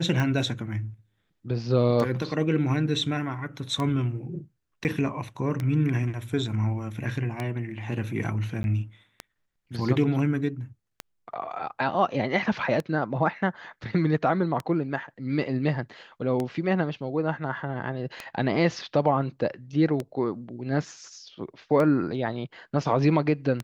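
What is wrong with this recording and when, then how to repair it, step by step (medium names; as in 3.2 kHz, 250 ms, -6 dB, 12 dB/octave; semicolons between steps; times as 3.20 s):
tick 33 1/3 rpm -16 dBFS
4.84–4.85 s: dropout 9.5 ms
8.63–8.64 s: dropout 11 ms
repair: de-click; interpolate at 4.84 s, 9.5 ms; interpolate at 8.63 s, 11 ms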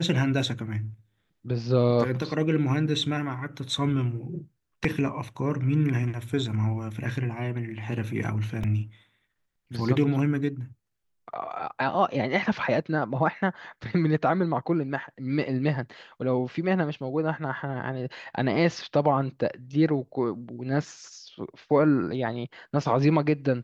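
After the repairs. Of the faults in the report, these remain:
nothing left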